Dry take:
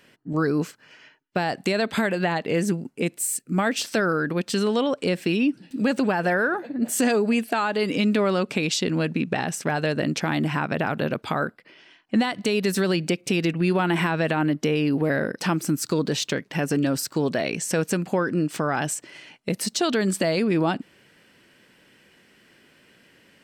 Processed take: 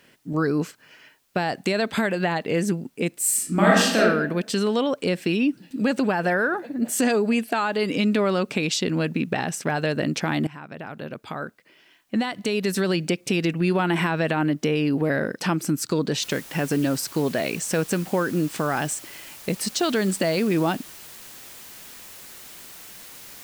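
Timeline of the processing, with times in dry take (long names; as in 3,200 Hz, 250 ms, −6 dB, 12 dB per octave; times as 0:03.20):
0:03.20–0:03.99: thrown reverb, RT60 0.86 s, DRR −5.5 dB
0:10.47–0:13.02: fade in, from −16.5 dB
0:16.23: noise floor change −68 dB −43 dB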